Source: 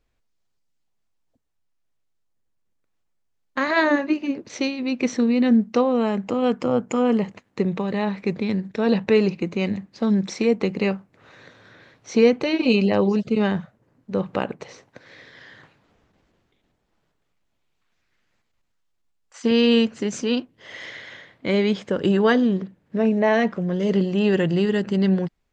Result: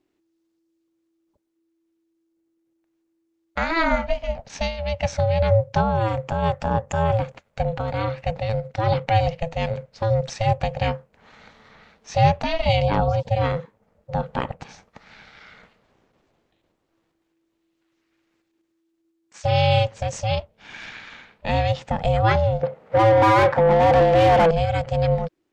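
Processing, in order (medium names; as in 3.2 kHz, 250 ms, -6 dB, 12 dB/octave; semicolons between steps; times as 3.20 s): ring modulator 330 Hz; 22.63–24.51 s: overdrive pedal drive 28 dB, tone 1.1 kHz, clips at -8.5 dBFS; trim +2 dB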